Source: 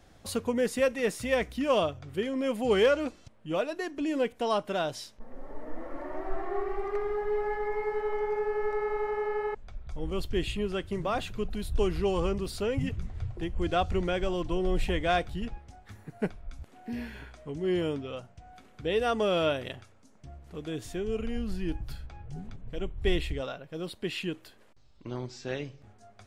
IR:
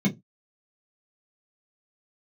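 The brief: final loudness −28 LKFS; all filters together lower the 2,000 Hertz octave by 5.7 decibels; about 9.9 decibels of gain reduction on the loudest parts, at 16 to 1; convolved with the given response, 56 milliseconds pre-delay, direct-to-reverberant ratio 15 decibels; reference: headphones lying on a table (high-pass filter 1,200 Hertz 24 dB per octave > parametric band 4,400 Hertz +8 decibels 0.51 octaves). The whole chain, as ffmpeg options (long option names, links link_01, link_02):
-filter_complex "[0:a]equalizer=frequency=2000:width_type=o:gain=-8,acompressor=threshold=-30dB:ratio=16,asplit=2[link_01][link_02];[1:a]atrim=start_sample=2205,adelay=56[link_03];[link_02][link_03]afir=irnorm=-1:irlink=0,volume=-24dB[link_04];[link_01][link_04]amix=inputs=2:normalize=0,highpass=frequency=1200:width=0.5412,highpass=frequency=1200:width=1.3066,equalizer=frequency=4400:width_type=o:width=0.51:gain=8,volume=18dB"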